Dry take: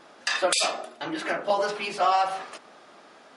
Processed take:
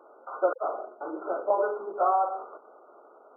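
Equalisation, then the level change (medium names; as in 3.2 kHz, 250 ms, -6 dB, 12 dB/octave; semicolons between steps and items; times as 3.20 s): ladder high-pass 350 Hz, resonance 45%; brick-wall FIR low-pass 1.5 kHz; +5.0 dB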